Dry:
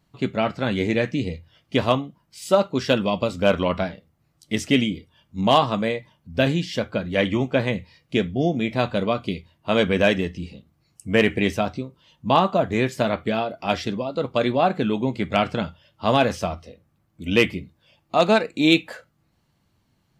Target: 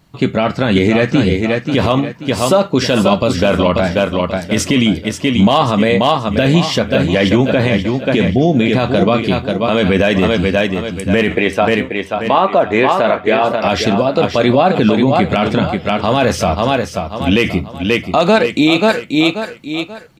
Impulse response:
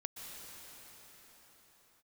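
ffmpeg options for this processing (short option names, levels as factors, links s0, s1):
-filter_complex "[0:a]asettb=1/sr,asplit=3[s0][s1][s2];[s0]atrim=end=11.354[s3];[s1]atrim=start=11.35:end=13.44,asetpts=PTS-STARTPTS,afade=t=in:d=0.004:c=qsin,afade=t=out:st=2.086:d=0.004:c=qsin,bass=f=250:g=-14,treble=f=4000:g=-13[s4];[s2]atrim=start=13.436[s5];[s3][s4]acrossfade=d=0.004:c1=hsin:c2=qsin[s6];[s6][s5]acrossfade=d=0.004:c1=qsin:c2=hsin,asplit=2[s7][s8];[s8]aecho=0:1:534|1068|1602|2136:0.398|0.131|0.0434|0.0143[s9];[s7][s9]amix=inputs=2:normalize=0,alimiter=level_in=5.31:limit=0.891:release=50:level=0:latency=1,volume=0.891"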